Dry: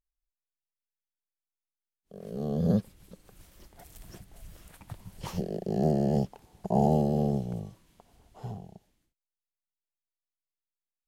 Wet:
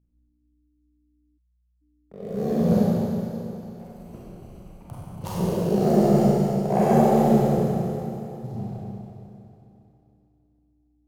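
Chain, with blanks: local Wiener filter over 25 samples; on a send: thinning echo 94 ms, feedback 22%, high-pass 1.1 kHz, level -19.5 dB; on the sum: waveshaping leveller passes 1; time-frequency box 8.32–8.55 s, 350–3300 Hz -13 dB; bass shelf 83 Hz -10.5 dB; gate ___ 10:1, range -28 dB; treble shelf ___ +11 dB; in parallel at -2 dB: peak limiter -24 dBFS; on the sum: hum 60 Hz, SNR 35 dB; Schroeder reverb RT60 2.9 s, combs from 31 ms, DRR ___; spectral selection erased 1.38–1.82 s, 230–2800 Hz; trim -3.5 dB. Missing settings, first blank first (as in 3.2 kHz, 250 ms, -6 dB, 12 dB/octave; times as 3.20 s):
-54 dBFS, 8.2 kHz, -7.5 dB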